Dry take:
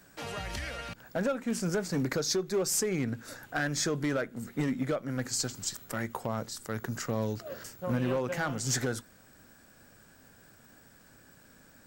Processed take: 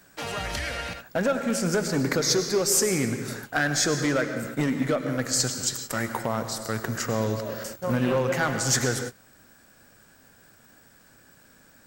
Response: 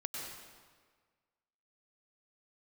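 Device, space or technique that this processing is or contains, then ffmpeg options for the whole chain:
keyed gated reverb: -filter_complex "[0:a]asplit=3[a][b][c];[1:a]atrim=start_sample=2205[d];[b][d]afir=irnorm=-1:irlink=0[e];[c]apad=whole_len=523109[f];[e][f]sidechaingate=range=-33dB:threshold=-47dB:ratio=16:detection=peak,volume=-1dB[g];[a][g]amix=inputs=2:normalize=0,lowshelf=f=480:g=-3.5,volume=3dB"

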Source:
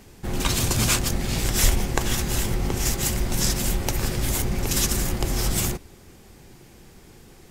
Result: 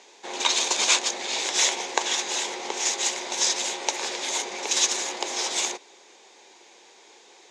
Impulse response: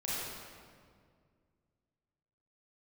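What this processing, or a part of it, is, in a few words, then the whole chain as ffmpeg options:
phone speaker on a table: -af "highpass=f=410:w=0.5412,highpass=f=410:w=1.3066,equalizer=f=930:t=q:w=4:g=7,equalizer=f=1.3k:t=q:w=4:g=-5,equalizer=f=2.3k:t=q:w=4:g=4,equalizer=f=3.7k:t=q:w=4:g=8,equalizer=f=6.6k:t=q:w=4:g=8,lowpass=f=7k:w=0.5412,lowpass=f=7k:w=1.3066"

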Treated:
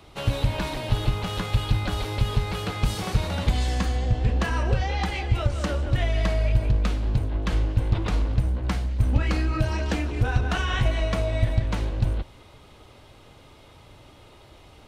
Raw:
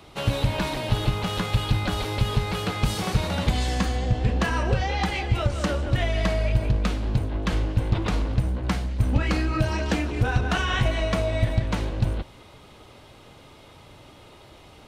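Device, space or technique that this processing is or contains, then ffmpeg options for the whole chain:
low shelf boost with a cut just above: -af "lowshelf=f=100:g=6,equalizer=f=180:t=o:w=0.77:g=-2.5,volume=-2.5dB"

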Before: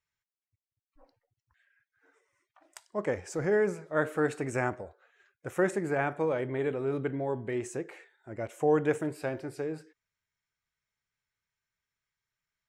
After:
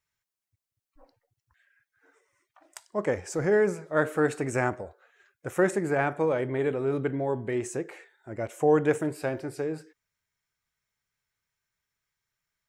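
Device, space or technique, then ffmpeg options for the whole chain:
exciter from parts: -filter_complex "[0:a]asplit=2[a][b];[b]highpass=f=2.6k:p=1,asoftclip=type=tanh:threshold=-31.5dB,highpass=3.1k,volume=-10dB[c];[a][c]amix=inputs=2:normalize=0,volume=3.5dB"

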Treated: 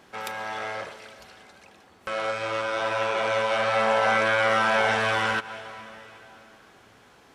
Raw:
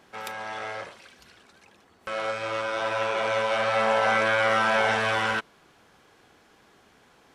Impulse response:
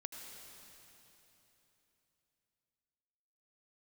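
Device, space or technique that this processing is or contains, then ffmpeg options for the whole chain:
ducked reverb: -filter_complex "[0:a]asplit=3[a][b][c];[1:a]atrim=start_sample=2205[d];[b][d]afir=irnorm=-1:irlink=0[e];[c]apad=whole_len=324072[f];[e][f]sidechaincompress=threshold=-34dB:ratio=8:attack=16:release=178,volume=-4dB[g];[a][g]amix=inputs=2:normalize=0"

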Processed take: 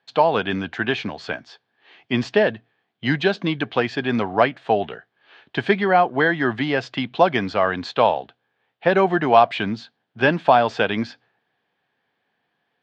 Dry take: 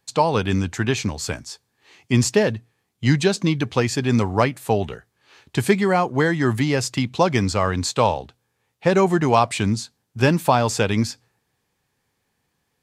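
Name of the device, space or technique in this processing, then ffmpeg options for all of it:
kitchen radio: -af "highpass=200,equalizer=f=690:t=q:w=4:g=8,equalizer=f=1.6k:t=q:w=4:g=7,equalizer=f=3.2k:t=q:w=4:g=5,lowpass=f=3.8k:w=0.5412,lowpass=f=3.8k:w=1.3066,volume=-1dB"

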